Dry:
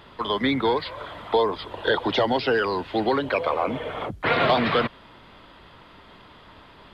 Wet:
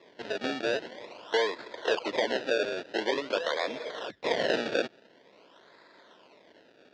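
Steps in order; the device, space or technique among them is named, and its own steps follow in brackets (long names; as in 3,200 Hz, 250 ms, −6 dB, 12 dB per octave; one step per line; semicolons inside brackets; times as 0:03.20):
circuit-bent sampling toy (sample-and-hold swept by an LFO 29×, swing 100% 0.47 Hz; loudspeaker in its box 450–4,600 Hz, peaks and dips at 800 Hz −8 dB, 1,200 Hz −9 dB, 2,300 Hz −3 dB)
level −2 dB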